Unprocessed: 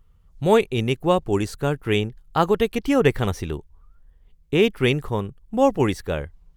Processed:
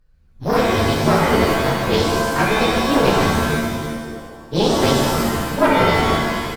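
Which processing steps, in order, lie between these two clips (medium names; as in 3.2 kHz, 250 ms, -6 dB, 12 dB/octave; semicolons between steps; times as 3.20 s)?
frequency axis rescaled in octaves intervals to 115%; vibrato 8.6 Hz 91 cents; frequency-shifting echo 167 ms, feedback 61%, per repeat -100 Hz, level -8 dB; Chebyshev shaper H 4 -11 dB, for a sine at -5.5 dBFS; pitch-shifted reverb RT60 1.1 s, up +7 st, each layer -2 dB, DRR -2 dB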